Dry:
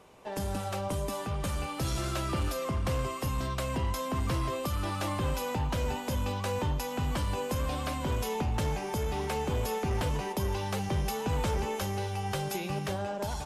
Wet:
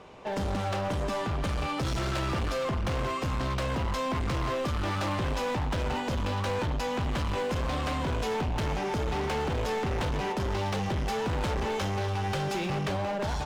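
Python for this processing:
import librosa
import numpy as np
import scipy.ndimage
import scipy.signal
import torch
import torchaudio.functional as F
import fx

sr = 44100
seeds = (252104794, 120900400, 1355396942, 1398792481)

y = scipy.signal.sosfilt(scipy.signal.butter(2, 4800.0, 'lowpass', fs=sr, output='sos'), x)
y = np.clip(10.0 ** (34.5 / 20.0) * y, -1.0, 1.0) / 10.0 ** (34.5 / 20.0)
y = F.gain(torch.from_numpy(y), 7.0).numpy()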